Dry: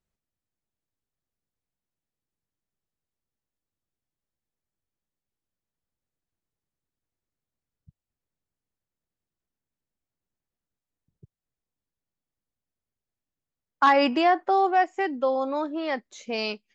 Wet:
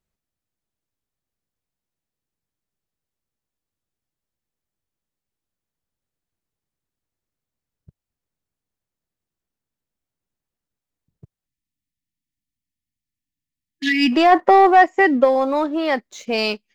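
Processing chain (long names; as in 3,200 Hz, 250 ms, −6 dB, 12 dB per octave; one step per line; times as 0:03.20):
0:11.46–0:14.12: time-frequency box erased 340–1,700 Hz
leveller curve on the samples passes 1
0:14.31–0:15.23: hollow resonant body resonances 210/520/1,000/1,900 Hz, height 11 dB → 8 dB, ringing for 20 ms
level +4.5 dB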